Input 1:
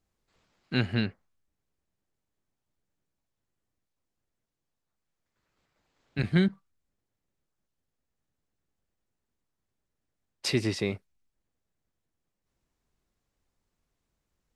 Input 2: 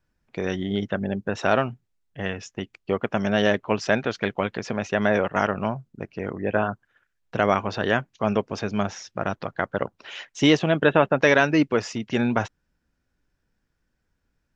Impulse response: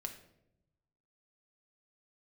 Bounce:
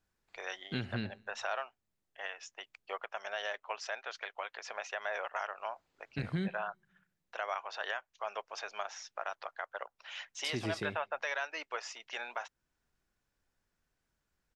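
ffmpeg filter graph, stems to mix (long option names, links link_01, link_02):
-filter_complex "[0:a]volume=-4dB,asplit=3[link_01][link_02][link_03];[link_02]volume=-23.5dB[link_04];[link_03]volume=-22dB[link_05];[1:a]highpass=frequency=670:width=0.5412,highpass=frequency=670:width=1.3066,volume=-6.5dB[link_06];[2:a]atrim=start_sample=2205[link_07];[link_04][link_07]afir=irnorm=-1:irlink=0[link_08];[link_05]aecho=0:1:74|148|222|296|370|444:1|0.42|0.176|0.0741|0.0311|0.0131[link_09];[link_01][link_06][link_08][link_09]amix=inputs=4:normalize=0,alimiter=limit=-24dB:level=0:latency=1:release=373"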